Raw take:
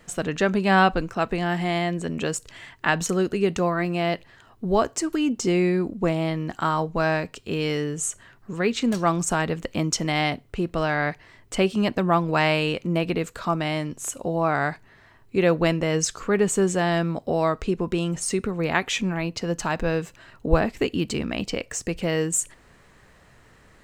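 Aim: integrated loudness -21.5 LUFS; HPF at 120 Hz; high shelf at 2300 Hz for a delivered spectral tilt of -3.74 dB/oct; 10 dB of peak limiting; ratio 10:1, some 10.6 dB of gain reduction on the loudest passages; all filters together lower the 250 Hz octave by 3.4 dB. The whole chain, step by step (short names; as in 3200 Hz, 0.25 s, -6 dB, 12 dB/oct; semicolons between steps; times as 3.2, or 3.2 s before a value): HPF 120 Hz; bell 250 Hz -5 dB; high shelf 2300 Hz +5.5 dB; compressor 10:1, threshold -23 dBFS; gain +8.5 dB; limiter -10 dBFS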